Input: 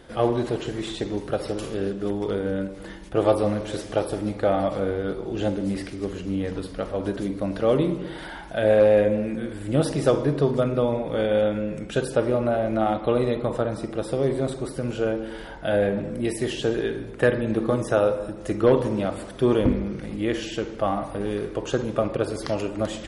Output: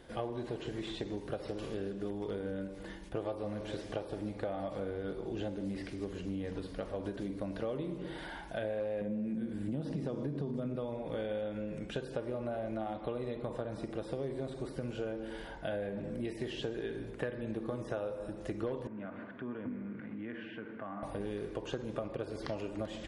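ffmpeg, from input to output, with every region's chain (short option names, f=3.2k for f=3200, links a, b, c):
-filter_complex "[0:a]asettb=1/sr,asplit=3[a][b][c];[a]atrim=end=9.014[d];[b]atrim=start=9.01:end=10.76,asetpts=PTS-STARTPTS,afade=t=in:d=0.004:c=qsin,afade=t=out:st=1.746:d=0.004:c=qsin,equalizer=f=200:w=1.2:g=14.5,acompressor=threshold=-17dB:ratio=2:attack=3.2:release=140:knee=1:detection=peak[e];[c]atrim=start=10.756[f];[d][e]acrossfade=d=0.004:c1=hsin:c2=qsin[g];[g][f]acrossfade=d=0.004:c1=qsin:c2=hsin,asettb=1/sr,asplit=3[h][i][j];[h]atrim=end=18.874[k];[i]atrim=start=18.87:end=21.03,asetpts=PTS-STARTPTS,afade=t=in:d=0.004:c=qsin,afade=t=out:st=2.156:d=0.004:c=qsin,acompressor=threshold=-30dB:ratio=3:attack=3.2:release=140:knee=1:detection=peak,highpass=f=120:w=0.5412,highpass=f=120:w=1.3066,equalizer=f=150:t=q:w=4:g=-9,equalizer=f=240:t=q:w=4:g=5,equalizer=f=360:t=q:w=4:g=-7,equalizer=f=530:t=q:w=4:g=-7,equalizer=f=790:t=q:w=4:g=-6,equalizer=f=1.5k:t=q:w=4:g=6,lowpass=f=2.3k:w=0.5412,lowpass=f=2.3k:w=1.3066[l];[j]atrim=start=21.026[m];[k][l]acrossfade=d=0.004:c1=hsin:c2=qsin[n];[n][m]acrossfade=d=0.004:c1=qsin:c2=hsin,acrossover=split=4900[o][p];[p]acompressor=threshold=-54dB:ratio=4:attack=1:release=60[q];[o][q]amix=inputs=2:normalize=0,bandreject=f=1.3k:w=13,acompressor=threshold=-27dB:ratio=6,volume=-7dB"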